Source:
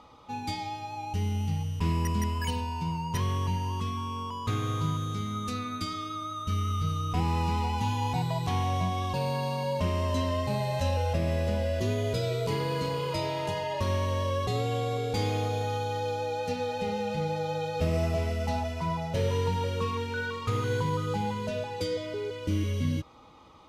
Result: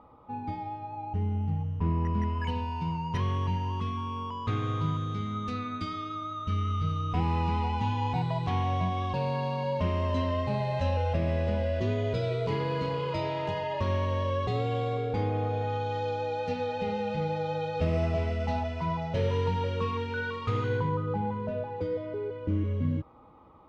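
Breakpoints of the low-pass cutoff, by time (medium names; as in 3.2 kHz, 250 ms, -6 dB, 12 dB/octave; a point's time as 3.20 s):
1.91 s 1.2 kHz
2.73 s 3.1 kHz
14.88 s 3.1 kHz
15.31 s 1.5 kHz
15.97 s 3.5 kHz
20.59 s 3.5 kHz
21.03 s 1.3 kHz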